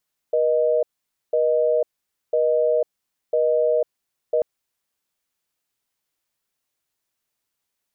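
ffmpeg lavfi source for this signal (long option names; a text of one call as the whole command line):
ffmpeg -f lavfi -i "aevalsrc='0.112*(sin(2*PI*480*t)+sin(2*PI*620*t))*clip(min(mod(t,1),0.5-mod(t,1))/0.005,0,1)':duration=4.09:sample_rate=44100" out.wav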